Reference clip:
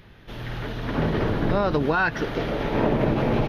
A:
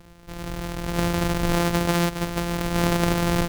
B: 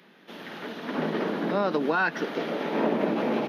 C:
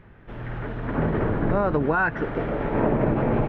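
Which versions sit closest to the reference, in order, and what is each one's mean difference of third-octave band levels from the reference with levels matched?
B, C, A; 3.5, 4.5, 9.0 decibels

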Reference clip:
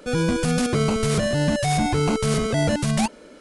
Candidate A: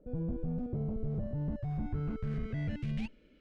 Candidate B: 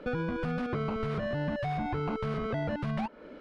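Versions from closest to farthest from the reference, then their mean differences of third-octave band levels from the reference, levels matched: B, A; 6.5, 12.0 decibels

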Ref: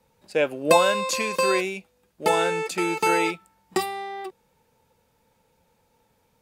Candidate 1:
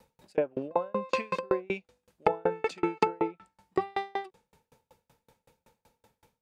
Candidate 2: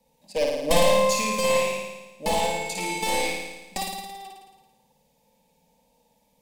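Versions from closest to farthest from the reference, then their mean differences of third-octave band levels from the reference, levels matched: 2, 1; 8.5, 11.0 decibels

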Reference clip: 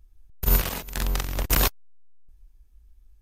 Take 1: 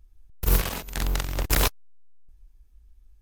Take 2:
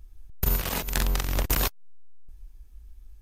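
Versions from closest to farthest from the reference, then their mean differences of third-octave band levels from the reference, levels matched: 1, 2; 1.5, 4.0 decibels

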